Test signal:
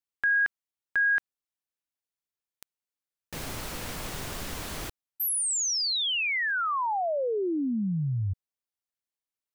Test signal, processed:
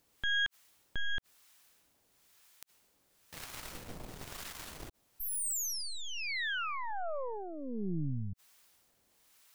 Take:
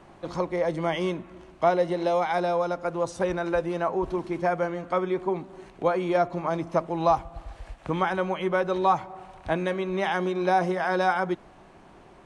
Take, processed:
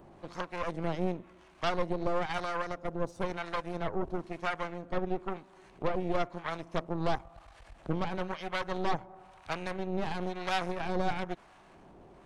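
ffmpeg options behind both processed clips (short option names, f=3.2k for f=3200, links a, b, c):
-filter_complex "[0:a]aeval=exprs='0.316*(cos(1*acos(clip(val(0)/0.316,-1,1)))-cos(1*PI/2))+0.1*(cos(6*acos(clip(val(0)/0.316,-1,1)))-cos(6*PI/2))':c=same,acompressor=mode=upward:threshold=-37dB:ratio=4:attack=0.27:release=36:knee=2.83:detection=peak,acrossover=split=810[a][b];[a]aeval=exprs='val(0)*(1-0.7/2+0.7/2*cos(2*PI*1*n/s))':c=same[c];[b]aeval=exprs='val(0)*(1-0.7/2-0.7/2*cos(2*PI*1*n/s))':c=same[d];[c][d]amix=inputs=2:normalize=0,volume=-7.5dB"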